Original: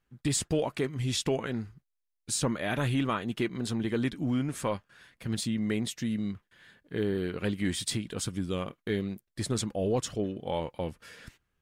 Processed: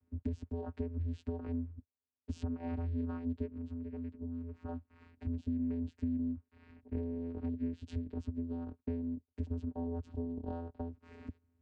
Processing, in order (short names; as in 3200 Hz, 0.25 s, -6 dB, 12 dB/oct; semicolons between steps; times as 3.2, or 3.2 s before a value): tilt -4 dB/oct; compressor 12:1, threshold -33 dBFS, peak gain reduction 19 dB; 3.45–4.68 rippled Chebyshev low-pass 6000 Hz, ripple 6 dB; vocoder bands 8, square 84.4 Hz; gain +1 dB